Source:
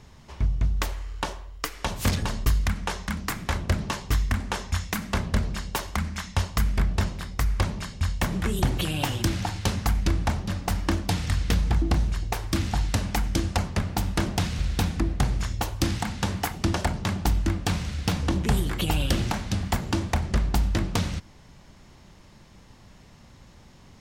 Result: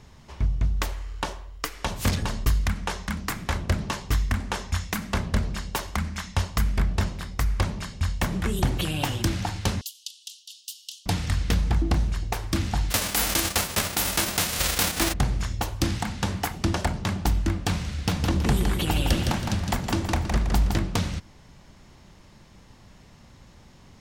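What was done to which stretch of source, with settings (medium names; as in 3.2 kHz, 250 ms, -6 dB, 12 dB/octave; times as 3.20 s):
9.81–11.06 s: steep high-pass 2.9 kHz 96 dB/octave
12.90–15.12 s: formants flattened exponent 0.3
18.04–20.78 s: feedback delay 162 ms, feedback 37%, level -5 dB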